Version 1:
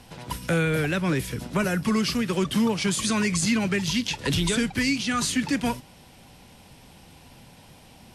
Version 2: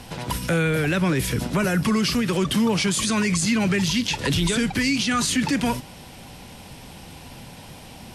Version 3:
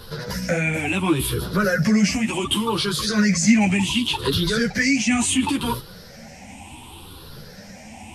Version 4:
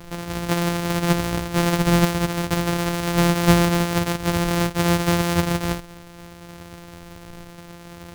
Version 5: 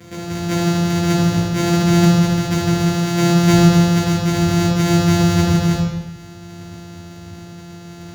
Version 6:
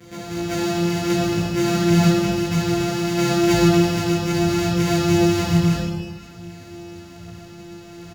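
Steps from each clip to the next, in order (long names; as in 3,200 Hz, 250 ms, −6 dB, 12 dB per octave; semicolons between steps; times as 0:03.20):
brickwall limiter −22.5 dBFS, peak gain reduction 8.5 dB; level +8.5 dB
rippled gain that drifts along the octave scale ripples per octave 0.61, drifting +0.69 Hz, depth 15 dB; string-ensemble chorus; level +1.5 dB
samples sorted by size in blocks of 256 samples
convolution reverb RT60 1.1 s, pre-delay 3 ms, DRR −4 dB; level −7 dB
repeating echo 125 ms, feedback 58%, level −11 dB; multi-voice chorus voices 4, 0.6 Hz, delay 17 ms, depth 3.1 ms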